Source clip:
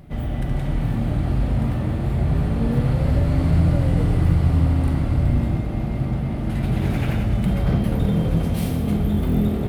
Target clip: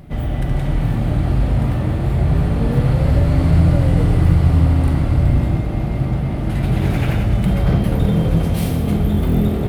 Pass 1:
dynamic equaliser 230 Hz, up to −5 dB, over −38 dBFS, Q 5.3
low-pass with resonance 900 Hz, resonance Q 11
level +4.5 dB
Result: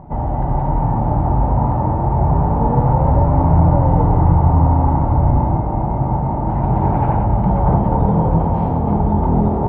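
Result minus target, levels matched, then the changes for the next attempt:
1,000 Hz band +12.0 dB
remove: low-pass with resonance 900 Hz, resonance Q 11

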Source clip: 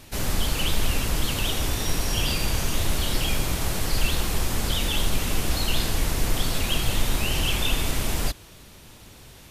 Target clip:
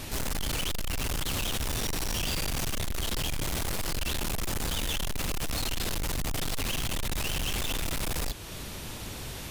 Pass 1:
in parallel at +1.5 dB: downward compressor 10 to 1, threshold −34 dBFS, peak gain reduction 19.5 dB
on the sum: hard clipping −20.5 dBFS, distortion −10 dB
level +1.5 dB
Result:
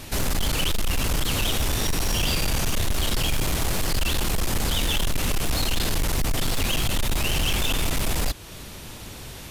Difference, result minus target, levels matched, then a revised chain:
hard clipping: distortion −5 dB
in parallel at +1.5 dB: downward compressor 10 to 1, threshold −34 dBFS, peak gain reduction 19.5 dB
on the sum: hard clipping −30 dBFS, distortion −5 dB
level +1.5 dB

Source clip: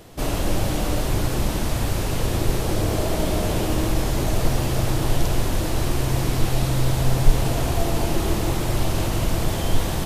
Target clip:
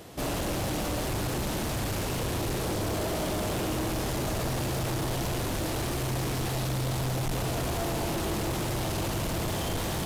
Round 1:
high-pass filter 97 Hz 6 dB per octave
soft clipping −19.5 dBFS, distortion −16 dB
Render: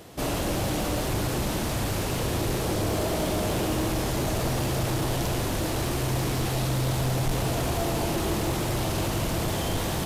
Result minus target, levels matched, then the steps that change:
soft clipping: distortion −7 dB
change: soft clipping −26.5 dBFS, distortion −10 dB

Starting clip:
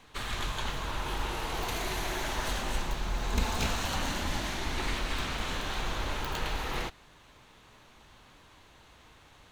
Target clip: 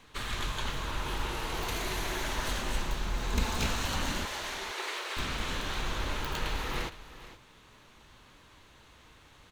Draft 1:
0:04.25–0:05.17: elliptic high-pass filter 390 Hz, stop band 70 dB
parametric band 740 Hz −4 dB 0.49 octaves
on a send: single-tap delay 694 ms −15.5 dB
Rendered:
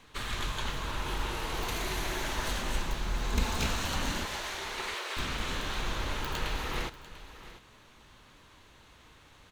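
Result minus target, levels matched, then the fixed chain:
echo 231 ms late
0:04.25–0:05.17: elliptic high-pass filter 390 Hz, stop band 70 dB
parametric band 740 Hz −4 dB 0.49 octaves
on a send: single-tap delay 463 ms −15.5 dB

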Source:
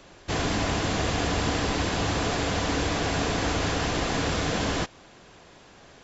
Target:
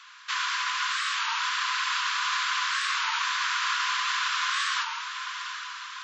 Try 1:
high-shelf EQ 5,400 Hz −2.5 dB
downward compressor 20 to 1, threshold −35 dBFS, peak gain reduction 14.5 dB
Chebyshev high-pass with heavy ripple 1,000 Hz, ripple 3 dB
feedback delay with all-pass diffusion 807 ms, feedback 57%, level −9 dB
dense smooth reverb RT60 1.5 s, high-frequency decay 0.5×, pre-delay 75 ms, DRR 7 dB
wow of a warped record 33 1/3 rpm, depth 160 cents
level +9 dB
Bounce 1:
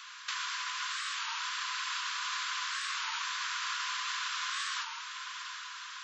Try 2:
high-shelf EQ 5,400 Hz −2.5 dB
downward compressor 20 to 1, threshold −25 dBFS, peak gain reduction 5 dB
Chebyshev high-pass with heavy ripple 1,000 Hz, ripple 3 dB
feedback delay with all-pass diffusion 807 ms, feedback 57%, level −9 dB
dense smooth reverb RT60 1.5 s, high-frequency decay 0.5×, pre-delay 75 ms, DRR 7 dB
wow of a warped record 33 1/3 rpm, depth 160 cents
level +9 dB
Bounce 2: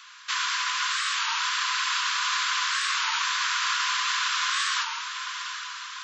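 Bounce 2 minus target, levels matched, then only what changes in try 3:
8,000 Hz band +3.5 dB
change: high-shelf EQ 5,400 Hz −11.5 dB

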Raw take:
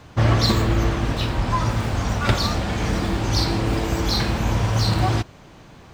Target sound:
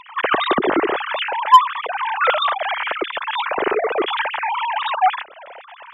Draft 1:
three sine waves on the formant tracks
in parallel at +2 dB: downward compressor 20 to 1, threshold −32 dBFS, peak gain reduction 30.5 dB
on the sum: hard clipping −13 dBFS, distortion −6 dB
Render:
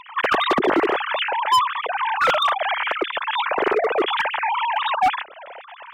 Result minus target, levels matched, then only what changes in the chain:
hard clipping: distortion +12 dB
change: hard clipping −2 dBFS, distortion −18 dB

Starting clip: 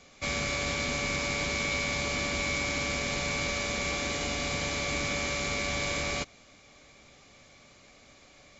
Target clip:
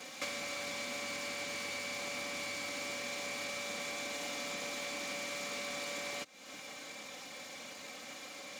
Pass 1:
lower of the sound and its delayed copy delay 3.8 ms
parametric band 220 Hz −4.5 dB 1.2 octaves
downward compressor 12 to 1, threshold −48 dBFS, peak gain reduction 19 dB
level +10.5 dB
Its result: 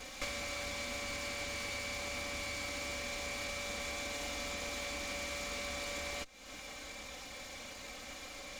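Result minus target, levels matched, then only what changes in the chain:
125 Hz band +8.0 dB
add after lower of the sound and its delayed copy: high-pass filter 130 Hz 24 dB per octave

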